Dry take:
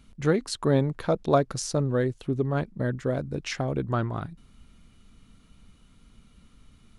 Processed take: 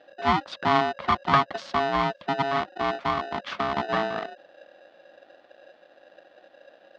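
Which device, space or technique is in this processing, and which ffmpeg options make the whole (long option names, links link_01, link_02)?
ring modulator pedal into a guitar cabinet: -af "aeval=exprs='val(0)*sgn(sin(2*PI*550*n/s))':channel_layout=same,highpass=110,equalizer=frequency=120:width_type=q:width=4:gain=-8,equalizer=frequency=200:width_type=q:width=4:gain=4,equalizer=frequency=410:width_type=q:width=4:gain=-7,equalizer=frequency=660:width_type=q:width=4:gain=4,equalizer=frequency=1200:width_type=q:width=4:gain=6,equalizer=frequency=2500:width_type=q:width=4:gain=-4,lowpass=frequency=3900:width=0.5412,lowpass=frequency=3900:width=1.3066"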